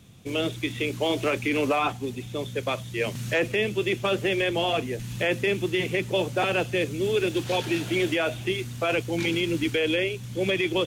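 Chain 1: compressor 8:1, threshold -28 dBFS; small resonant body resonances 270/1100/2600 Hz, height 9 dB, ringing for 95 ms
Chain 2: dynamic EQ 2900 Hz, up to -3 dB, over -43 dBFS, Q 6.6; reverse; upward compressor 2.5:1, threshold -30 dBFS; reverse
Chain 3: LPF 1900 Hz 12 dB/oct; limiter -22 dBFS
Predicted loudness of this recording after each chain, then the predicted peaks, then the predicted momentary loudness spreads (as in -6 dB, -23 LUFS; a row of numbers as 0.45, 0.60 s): -31.5, -26.5, -31.0 LUFS; -17.0, -14.5, -22.0 dBFS; 3, 5, 4 LU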